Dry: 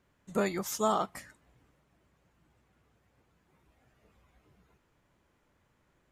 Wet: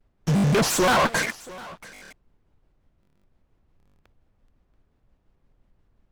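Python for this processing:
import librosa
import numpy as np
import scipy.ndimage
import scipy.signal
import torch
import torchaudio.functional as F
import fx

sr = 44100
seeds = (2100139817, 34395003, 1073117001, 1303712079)

p1 = fx.rider(x, sr, range_db=10, speed_s=2.0)
p2 = x + (p1 * 10.0 ** (1.0 / 20.0))
p3 = scipy.signal.sosfilt(scipy.signal.butter(4, 140.0, 'highpass', fs=sr, output='sos'), p2)
p4 = fx.peak_eq(p3, sr, hz=180.0, db=-4.0, octaves=2.2)
p5 = fx.notch(p4, sr, hz=1700.0, q=17.0)
p6 = fx.fuzz(p5, sr, gain_db=46.0, gate_db=-53.0)
p7 = fx.dmg_noise_colour(p6, sr, seeds[0], colour='brown', level_db=-58.0)
p8 = fx.high_shelf(p7, sr, hz=5700.0, db=-11.0)
p9 = p8 + fx.echo_single(p8, sr, ms=679, db=-20.0, dry=0)
p10 = fx.buffer_glitch(p9, sr, at_s=(0.31, 1.89, 3.01, 3.78), block=1024, repeats=9)
p11 = fx.vibrato_shape(p10, sr, shape='square', rate_hz=5.7, depth_cents=250.0)
y = p11 * 10.0 ** (-4.0 / 20.0)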